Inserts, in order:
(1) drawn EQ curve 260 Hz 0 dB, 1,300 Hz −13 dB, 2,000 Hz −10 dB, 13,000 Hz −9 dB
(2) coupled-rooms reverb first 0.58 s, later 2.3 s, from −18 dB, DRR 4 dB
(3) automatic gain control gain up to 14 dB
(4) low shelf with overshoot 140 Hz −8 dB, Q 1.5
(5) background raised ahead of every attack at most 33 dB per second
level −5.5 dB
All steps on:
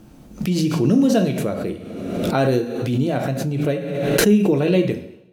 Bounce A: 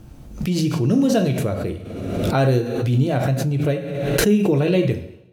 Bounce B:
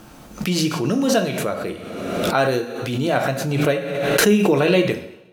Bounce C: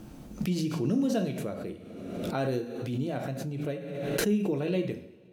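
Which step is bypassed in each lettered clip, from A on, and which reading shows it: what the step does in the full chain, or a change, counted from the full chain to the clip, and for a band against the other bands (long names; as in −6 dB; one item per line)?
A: 4, 125 Hz band +4.0 dB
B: 1, 125 Hz band −6.5 dB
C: 3, change in integrated loudness −11.5 LU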